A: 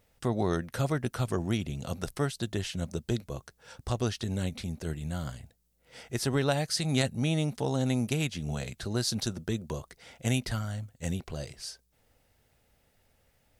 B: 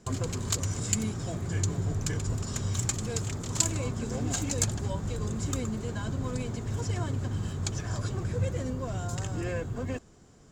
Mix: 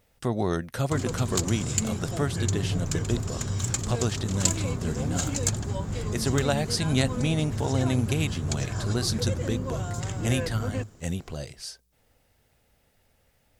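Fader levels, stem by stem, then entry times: +2.0, +1.5 dB; 0.00, 0.85 s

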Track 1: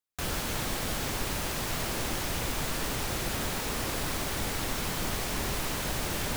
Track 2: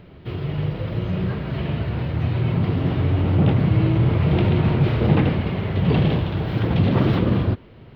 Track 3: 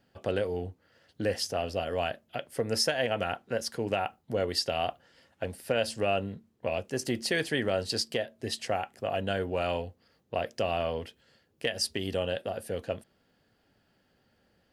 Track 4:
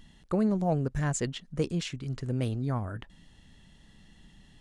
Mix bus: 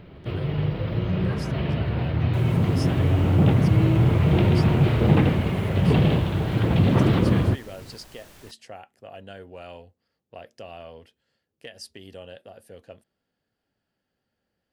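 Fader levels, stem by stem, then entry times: -18.0 dB, -0.5 dB, -11.0 dB, off; 2.15 s, 0.00 s, 0.00 s, off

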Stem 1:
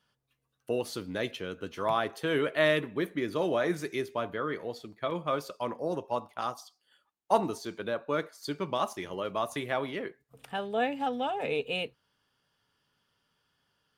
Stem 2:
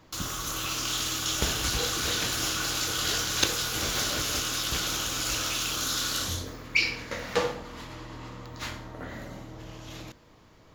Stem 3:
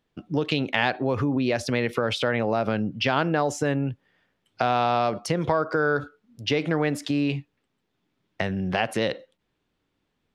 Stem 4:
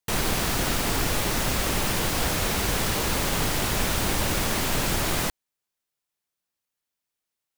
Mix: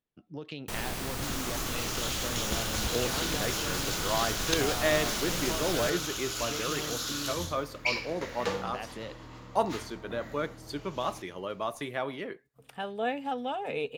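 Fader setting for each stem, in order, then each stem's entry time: -2.0, -5.5, -16.0, -10.5 dB; 2.25, 1.10, 0.00, 0.60 s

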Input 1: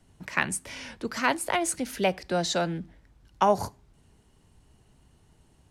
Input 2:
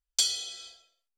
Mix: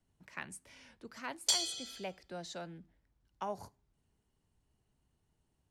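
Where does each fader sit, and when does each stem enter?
-17.5, -4.5 dB; 0.00, 1.30 s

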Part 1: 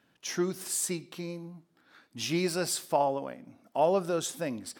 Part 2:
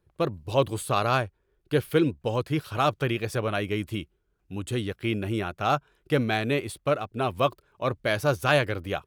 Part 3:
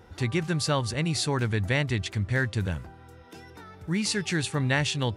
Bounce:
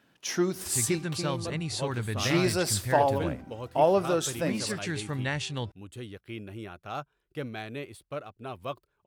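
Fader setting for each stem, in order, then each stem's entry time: +3.0, -12.0, -6.0 dB; 0.00, 1.25, 0.55 s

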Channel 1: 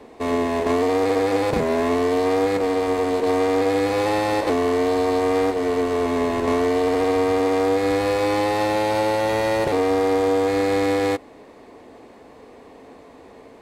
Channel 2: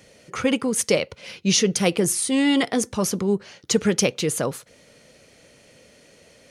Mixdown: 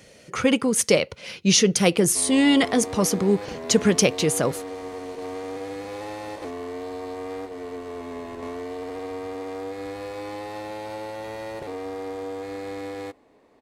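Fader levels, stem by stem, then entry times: -13.5, +1.5 dB; 1.95, 0.00 s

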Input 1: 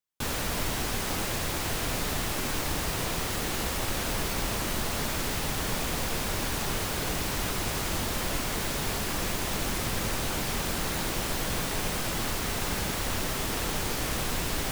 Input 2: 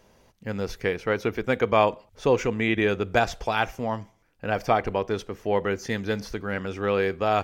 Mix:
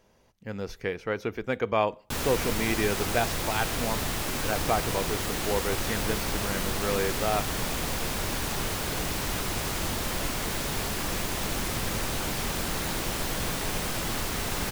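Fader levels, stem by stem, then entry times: 0.0, -5.0 dB; 1.90, 0.00 s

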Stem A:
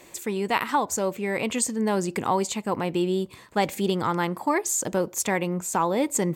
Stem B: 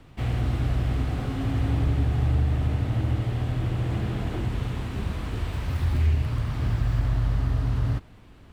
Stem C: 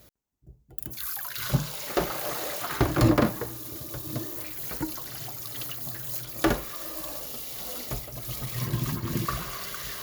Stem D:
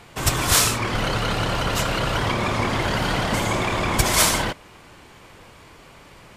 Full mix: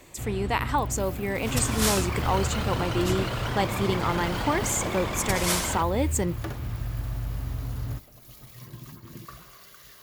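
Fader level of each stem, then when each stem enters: -2.5, -7.5, -14.0, -8.5 dB; 0.00, 0.00, 0.00, 1.30 s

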